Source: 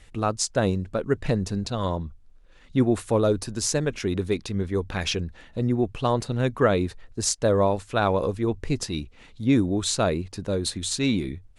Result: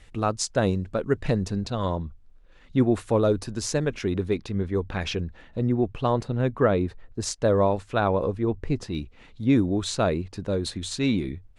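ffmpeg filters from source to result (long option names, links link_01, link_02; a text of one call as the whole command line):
ffmpeg -i in.wav -af "asetnsamples=nb_out_samples=441:pad=0,asendcmd='1.48 lowpass f 4100;4.1 lowpass f 2500;6.23 lowpass f 1500;7.22 lowpass f 3300;8.01 lowpass f 1600;8.95 lowpass f 3500',lowpass=frequency=7100:poles=1" out.wav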